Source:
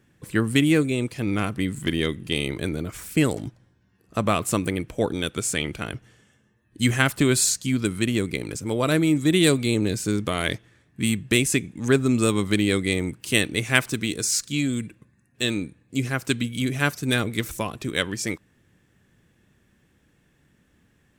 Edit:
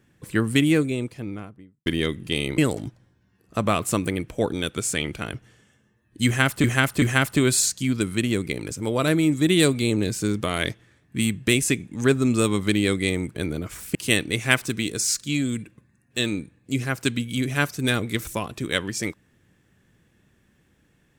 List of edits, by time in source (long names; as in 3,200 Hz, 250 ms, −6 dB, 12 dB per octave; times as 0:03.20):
0:00.61–0:01.86: fade out and dull
0:02.58–0:03.18: move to 0:13.19
0:06.86–0:07.24: repeat, 3 plays